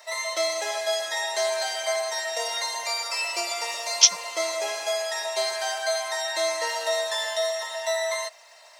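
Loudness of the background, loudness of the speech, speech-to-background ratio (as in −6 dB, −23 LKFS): −27.0 LKFS, −18.0 LKFS, 9.0 dB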